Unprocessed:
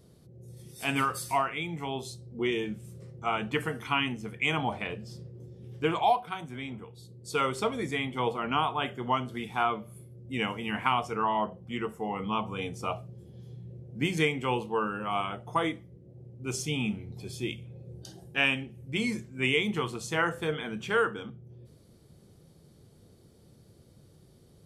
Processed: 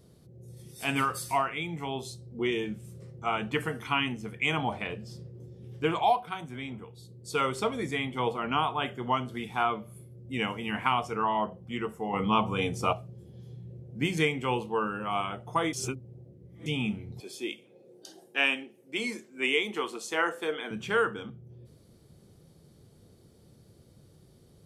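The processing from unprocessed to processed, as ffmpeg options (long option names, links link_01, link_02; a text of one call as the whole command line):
ffmpeg -i in.wav -filter_complex "[0:a]asettb=1/sr,asplit=3[link_01][link_02][link_03];[link_01]atrim=end=12.134[link_04];[link_02]atrim=start=12.13:end=12.93,asetpts=PTS-STARTPTS,afade=type=in:duration=0.004:curve=qsin,afade=type=out:start_time=0.796:duration=0.004:curve=qsin,acontrast=38[link_05];[link_03]atrim=start=12.926[link_06];[link_04][link_05]acrossfade=duration=0.004:curve1=hsin:curve2=qsin[link_07];[link_07][link_06]acrossfade=duration=0.004:curve1=qsin:curve2=hsin,asettb=1/sr,asplit=3[link_08][link_09][link_10];[link_08]atrim=end=17.204[link_11];[link_09]atrim=start=17.2:end=20.71,asetpts=PTS-STARTPTS,afade=type=in:duration=0.004:curve=qsin,afade=type=out:start_time=3.506:duration=0.004:curve=qsin,highpass=frequency=270:width=0.5412,highpass=frequency=270:width=1.3066[link_12];[link_10]atrim=start=20.706[link_13];[link_11][link_12]acrossfade=duration=0.004:curve1=hsin:curve2=qsin[link_14];[link_14][link_13]acrossfade=duration=0.004:curve1=qsin:curve2=hsin,asplit=3[link_15][link_16][link_17];[link_15]atrim=end=15.732[link_18];[link_16]atrim=start=15.728:end=16.662,asetpts=PTS-STARTPTS,areverse[link_19];[link_17]atrim=start=16.658[link_20];[link_18][link_19]acrossfade=duration=0.004:curve1=hsin:curve2=hsin[link_21];[link_21][link_20]acrossfade=duration=0.004:curve1=hsin:curve2=hsin" out.wav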